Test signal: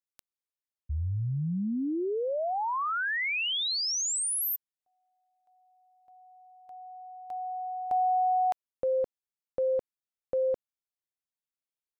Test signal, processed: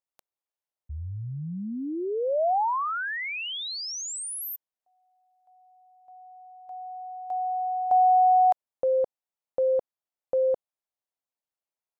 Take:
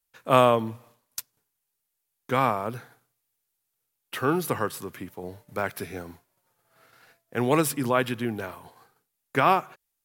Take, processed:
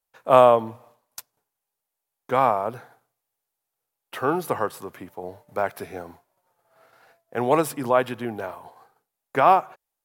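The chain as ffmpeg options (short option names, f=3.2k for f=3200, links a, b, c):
-af "equalizer=f=720:t=o:w=1.6:g=11.5,volume=-4.5dB"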